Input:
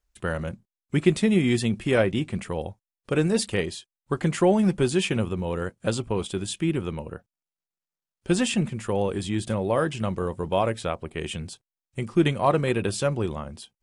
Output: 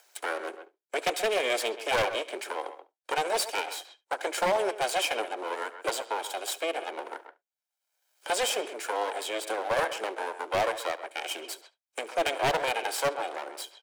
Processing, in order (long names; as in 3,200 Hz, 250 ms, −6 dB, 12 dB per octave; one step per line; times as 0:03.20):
lower of the sound and its delayed copy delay 1.3 ms
noise gate with hold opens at −40 dBFS
Butterworth high-pass 340 Hz 48 dB per octave
far-end echo of a speakerphone 130 ms, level −13 dB
upward compression, threshold −31 dBFS
on a send: single-tap delay 71 ms −21 dB
on the sum: wave folding −19.5 dBFS
level +1 dB